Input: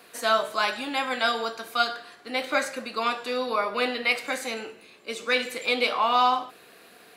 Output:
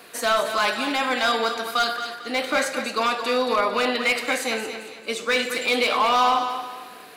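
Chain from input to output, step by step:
in parallel at +2.5 dB: brickwall limiter −18.5 dBFS, peak gain reduction 8.5 dB
on the sum: hard clipping −13.5 dBFS, distortion −16 dB
feedback echo with a high-pass in the loop 224 ms, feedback 36%, high-pass 170 Hz, level −9 dB
level −1.5 dB

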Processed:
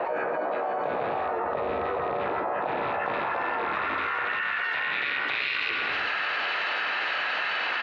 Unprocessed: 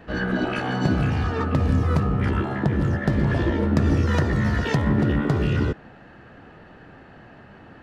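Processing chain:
loose part that buzzes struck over −20 dBFS, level −20 dBFS
three-way crossover with the lows and the highs turned down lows −16 dB, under 440 Hz, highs −24 dB, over 3,200 Hz
hum removal 164 Hz, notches 2
band-pass filter sweep 660 Hz → 3,000 Hz, 0:02.31–0:05.86
repeating echo 84 ms, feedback 26%, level −16.5 dB
rectangular room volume 250 cubic metres, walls mixed, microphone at 0.41 metres
pitch-shifted copies added −4 semitones −5 dB, +3 semitones −15 dB, +7 semitones −9 dB
envelope flattener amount 100%

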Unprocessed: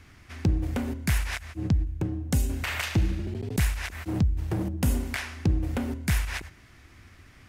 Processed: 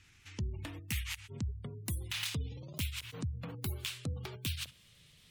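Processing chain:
gliding playback speed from 114% → 168%
guitar amp tone stack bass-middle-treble 5-5-5
gate on every frequency bin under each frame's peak −30 dB strong
level +2 dB

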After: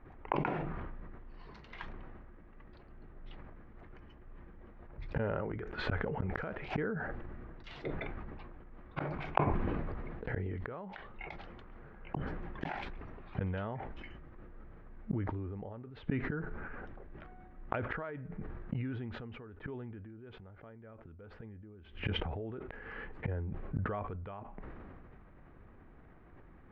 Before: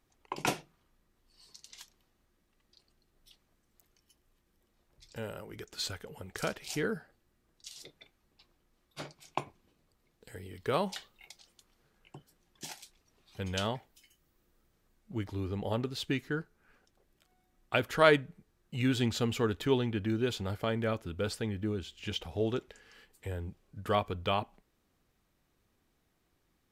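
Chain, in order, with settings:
low-pass filter 1,900 Hz 24 dB per octave
low-shelf EQ 76 Hz +6 dB
downward compressor 2 to 1, threshold −38 dBFS, peak gain reduction 11.5 dB
gate with flip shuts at −38 dBFS, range −32 dB
level that may fall only so fast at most 21 dB per second
level +15.5 dB

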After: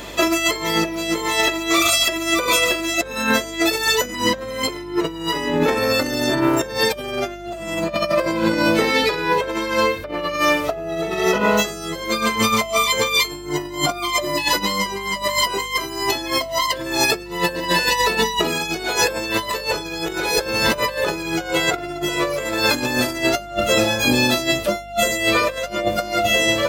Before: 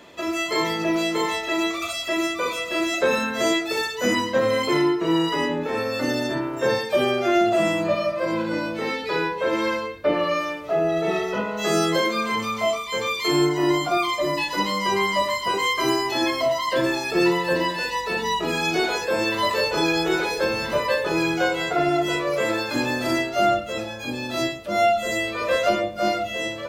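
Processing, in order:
high-shelf EQ 5,500 Hz +10.5 dB
compressor whose output falls as the input rises −27 dBFS, ratio −0.5
mains hum 50 Hz, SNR 23 dB
level +7 dB

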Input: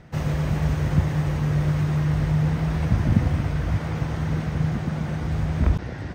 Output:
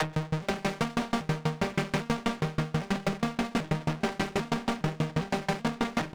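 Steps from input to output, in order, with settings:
vocoder with an arpeggio as carrier major triad, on D#3, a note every 399 ms
upward compression, threshold −26 dBFS
mid-hump overdrive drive 44 dB, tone 2,100 Hz, clips at −6 dBFS
hard clipping −21.5 dBFS, distortion −11 dB
single-tap delay 554 ms −7 dB
tremolo with a ramp in dB decaying 6.2 Hz, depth 29 dB
level −1 dB

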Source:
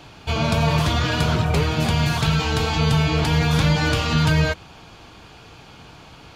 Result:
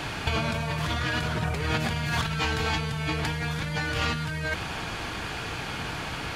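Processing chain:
parametric band 1,800 Hz +8 dB 0.76 octaves
compressor whose output falls as the input rises −28 dBFS, ratio −1
noise in a band 840–11,000 Hz −53 dBFS

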